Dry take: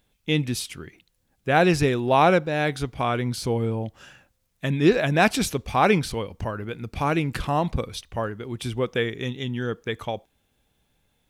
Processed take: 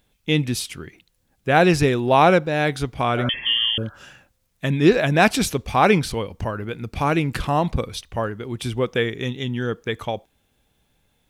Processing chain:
0:03.20–0:03.97: healed spectral selection 560–1,700 Hz both
0:03.29–0:03.78: voice inversion scrambler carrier 3,300 Hz
level +3 dB

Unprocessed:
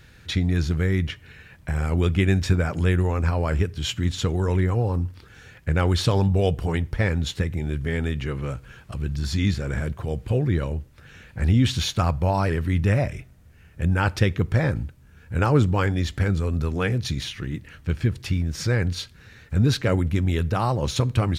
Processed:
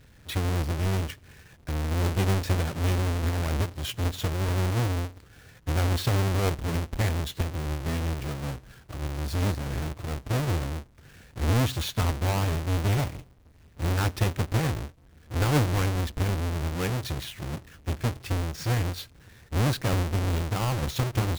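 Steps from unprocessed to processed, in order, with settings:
each half-wave held at its own peak
level −9 dB

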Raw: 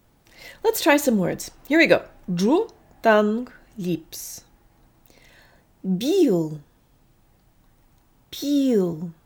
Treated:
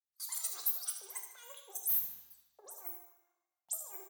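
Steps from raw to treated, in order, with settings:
every frequency bin delayed by itself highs late, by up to 148 ms
noise reduction from a noise print of the clip's start 13 dB
noise gate with hold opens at −42 dBFS
high-shelf EQ 6,700 Hz +9.5 dB
compressor whose output falls as the input rises −29 dBFS, ratio −1
resonant band-pass 6,100 Hz, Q 1.5
soft clipping −23.5 dBFS, distortion −14 dB
change of speed 2.26×
repeating echo 75 ms, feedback 42%, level −11 dB
on a send at −4 dB: convolution reverb RT60 1.1 s, pre-delay 3 ms

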